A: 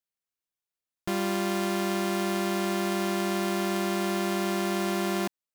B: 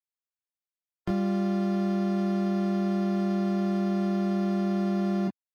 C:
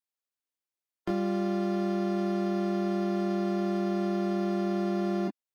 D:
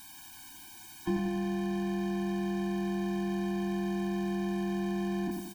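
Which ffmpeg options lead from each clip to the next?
-filter_complex "[0:a]afftdn=nr=19:nf=-37,acrossover=split=290[a][b];[b]acompressor=threshold=-43dB:ratio=8[c];[a][c]amix=inputs=2:normalize=0,asplit=2[d][e];[e]aecho=0:1:17|27:0.631|0.596[f];[d][f]amix=inputs=2:normalize=0,volume=5dB"
-af "lowshelf=f=200:t=q:w=1.5:g=-8"
-filter_complex "[0:a]aeval=exprs='val(0)+0.5*0.0141*sgn(val(0))':c=same,asplit=2[a][b];[b]adelay=90,lowpass=f=2.2k:p=1,volume=-4dB,asplit=2[c][d];[d]adelay=90,lowpass=f=2.2k:p=1,volume=0.53,asplit=2[e][f];[f]adelay=90,lowpass=f=2.2k:p=1,volume=0.53,asplit=2[g][h];[h]adelay=90,lowpass=f=2.2k:p=1,volume=0.53,asplit=2[i][j];[j]adelay=90,lowpass=f=2.2k:p=1,volume=0.53,asplit=2[k][l];[l]adelay=90,lowpass=f=2.2k:p=1,volume=0.53,asplit=2[m][n];[n]adelay=90,lowpass=f=2.2k:p=1,volume=0.53[o];[a][c][e][g][i][k][m][o]amix=inputs=8:normalize=0,afftfilt=real='re*eq(mod(floor(b*sr/1024/360),2),0)':imag='im*eq(mod(floor(b*sr/1024/360),2),0)':win_size=1024:overlap=0.75"

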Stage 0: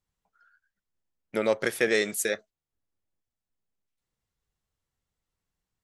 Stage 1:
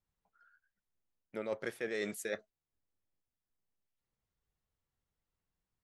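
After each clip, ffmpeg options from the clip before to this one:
-af "highshelf=f=3.6k:g=-8.5,areverse,acompressor=threshold=-31dB:ratio=6,areverse,volume=-3dB"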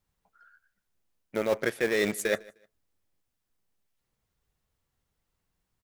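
-filter_complex "[0:a]asplit=2[a][b];[b]acrusher=bits=5:mix=0:aa=0.000001,volume=-10dB[c];[a][c]amix=inputs=2:normalize=0,aecho=1:1:153|306:0.0668|0.0154,volume=8.5dB"

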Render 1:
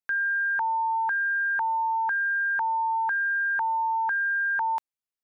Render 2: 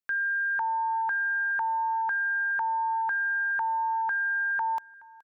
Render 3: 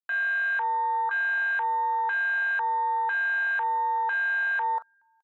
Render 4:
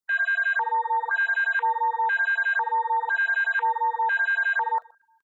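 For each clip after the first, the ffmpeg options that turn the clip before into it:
-af "aecho=1:1:423|846:0.0668|0.0221,volume=-2dB"
-filter_complex "[0:a]asplit=2[a][b];[b]adelay=40,volume=-13dB[c];[a][c]amix=inputs=2:normalize=0,afwtdn=0.0355"
-af "aecho=1:1:124:0.0794,afftfilt=real='re*(1-between(b*sr/1024,610*pow(3200/610,0.5+0.5*sin(2*PI*5.5*pts/sr))/1.41,610*pow(3200/610,0.5+0.5*sin(2*PI*5.5*pts/sr))*1.41))':imag='im*(1-between(b*sr/1024,610*pow(3200/610,0.5+0.5*sin(2*PI*5.5*pts/sr))/1.41,610*pow(3200/610,0.5+0.5*sin(2*PI*5.5*pts/sr))*1.41))':win_size=1024:overlap=0.75,volume=4.5dB"

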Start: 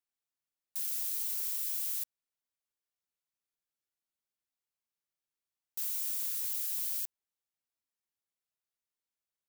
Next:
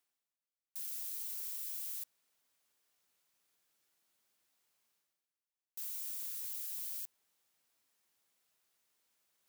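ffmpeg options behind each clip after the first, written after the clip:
-af "lowshelf=f=98:g=-11,areverse,acompressor=mode=upward:threshold=-54dB:ratio=2.5,areverse,volume=-7dB"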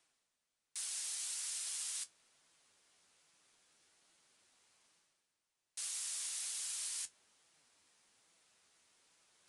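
-af "flanger=delay=5.9:depth=6.4:regen=55:speed=1.2:shape=sinusoidal,aresample=22050,aresample=44100,volume=14dB"

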